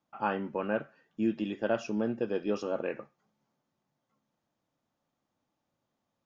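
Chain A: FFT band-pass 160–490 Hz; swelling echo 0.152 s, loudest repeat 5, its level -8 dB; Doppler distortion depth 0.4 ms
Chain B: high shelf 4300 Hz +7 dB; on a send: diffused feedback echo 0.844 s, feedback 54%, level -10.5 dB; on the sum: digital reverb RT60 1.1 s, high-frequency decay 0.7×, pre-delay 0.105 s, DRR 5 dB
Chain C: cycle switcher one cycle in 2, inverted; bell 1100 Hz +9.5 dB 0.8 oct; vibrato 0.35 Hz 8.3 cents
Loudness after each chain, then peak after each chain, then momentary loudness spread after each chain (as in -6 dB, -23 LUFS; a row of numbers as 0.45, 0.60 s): -33.5, -32.5, -30.0 LUFS; -15.5, -15.5, -12.5 dBFS; 16, 19, 5 LU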